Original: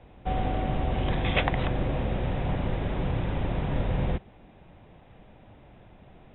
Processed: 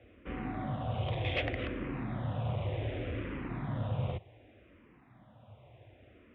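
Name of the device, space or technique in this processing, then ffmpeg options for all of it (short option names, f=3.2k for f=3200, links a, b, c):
barber-pole phaser into a guitar amplifier: -filter_complex "[0:a]asplit=2[a][b];[b]afreqshift=-0.66[c];[a][c]amix=inputs=2:normalize=1,asoftclip=type=tanh:threshold=-24dB,highpass=94,equalizer=f=110:t=q:w=4:g=6,equalizer=f=170:t=q:w=4:g=-10,equalizer=f=410:t=q:w=4:g=-4,equalizer=f=850:t=q:w=4:g=-7,equalizer=f=1.6k:t=q:w=4:g=-3,lowpass=f=3.5k:w=0.5412,lowpass=f=3.5k:w=1.3066"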